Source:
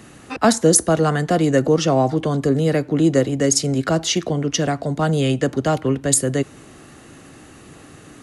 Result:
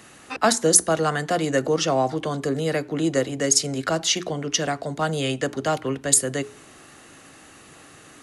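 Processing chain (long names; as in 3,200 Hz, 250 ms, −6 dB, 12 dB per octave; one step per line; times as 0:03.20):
low-shelf EQ 450 Hz −10 dB
mains-hum notches 60/120/180/240/300/360/420 Hz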